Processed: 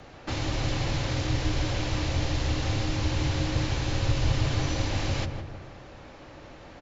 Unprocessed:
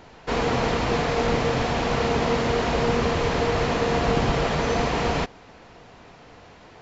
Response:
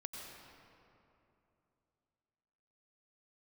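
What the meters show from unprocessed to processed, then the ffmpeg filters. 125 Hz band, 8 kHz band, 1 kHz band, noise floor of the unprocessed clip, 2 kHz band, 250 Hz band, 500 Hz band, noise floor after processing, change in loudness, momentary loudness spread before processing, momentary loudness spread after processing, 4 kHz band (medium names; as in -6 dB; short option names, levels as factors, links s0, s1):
+1.5 dB, no reading, -12.0 dB, -49 dBFS, -7.5 dB, -6.0 dB, -13.0 dB, -47 dBFS, -5.5 dB, 2 LU, 20 LU, -2.5 dB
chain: -filter_complex "[0:a]acrossover=split=190|3000[s0][s1][s2];[s1]acompressor=threshold=0.02:ratio=6[s3];[s0][s3][s2]amix=inputs=3:normalize=0,afreqshift=-160,asplit=2[s4][s5];[s5]adelay=162,lowpass=f=1300:p=1,volume=0.562,asplit=2[s6][s7];[s7]adelay=162,lowpass=f=1300:p=1,volume=0.51,asplit=2[s8][s9];[s9]adelay=162,lowpass=f=1300:p=1,volume=0.51,asplit=2[s10][s11];[s11]adelay=162,lowpass=f=1300:p=1,volume=0.51,asplit=2[s12][s13];[s13]adelay=162,lowpass=f=1300:p=1,volume=0.51,asplit=2[s14][s15];[s15]adelay=162,lowpass=f=1300:p=1,volume=0.51[s16];[s4][s6][s8][s10][s12][s14][s16]amix=inputs=7:normalize=0"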